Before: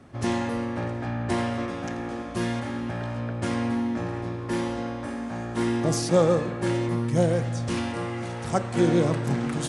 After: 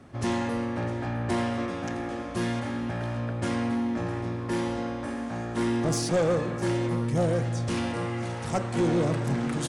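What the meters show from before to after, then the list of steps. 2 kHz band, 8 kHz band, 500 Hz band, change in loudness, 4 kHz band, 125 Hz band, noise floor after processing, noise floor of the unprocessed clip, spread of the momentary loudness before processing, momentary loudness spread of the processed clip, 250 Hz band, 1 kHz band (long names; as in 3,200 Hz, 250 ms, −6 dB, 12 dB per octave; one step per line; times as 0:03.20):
−1.0 dB, −1.5 dB, −2.5 dB, −2.0 dB, −1.0 dB, −1.5 dB, −34 dBFS, −34 dBFS, 10 LU, 7 LU, −1.5 dB, −1.5 dB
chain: soft clipping −18.5 dBFS, distortion −13 dB
single-tap delay 657 ms −18 dB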